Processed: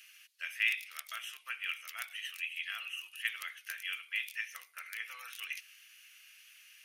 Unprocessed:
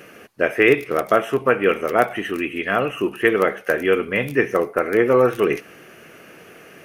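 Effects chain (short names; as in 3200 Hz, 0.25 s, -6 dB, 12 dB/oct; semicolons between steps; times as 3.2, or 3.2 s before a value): ladder high-pass 2400 Hz, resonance 25%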